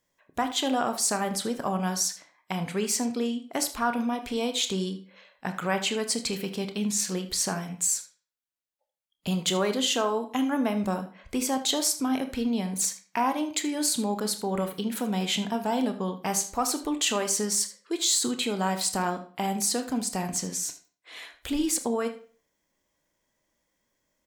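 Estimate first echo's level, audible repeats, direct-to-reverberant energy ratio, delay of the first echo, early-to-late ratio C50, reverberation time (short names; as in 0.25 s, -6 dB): -16.5 dB, 1, 7.5 dB, 78 ms, 11.5 dB, 0.45 s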